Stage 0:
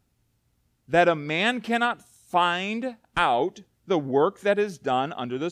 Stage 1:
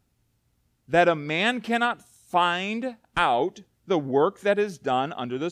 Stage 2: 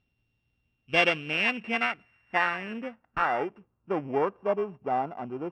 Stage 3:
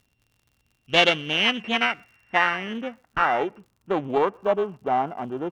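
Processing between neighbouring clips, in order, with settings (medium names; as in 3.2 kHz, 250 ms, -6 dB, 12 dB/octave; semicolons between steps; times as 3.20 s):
no audible change
sorted samples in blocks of 16 samples; low-pass sweep 3.5 kHz -> 950 Hz, 0.50–4.36 s; trim -6.5 dB
crackle 76 per s -53 dBFS; speakerphone echo 120 ms, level -30 dB; loudspeaker Doppler distortion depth 0.21 ms; trim +5 dB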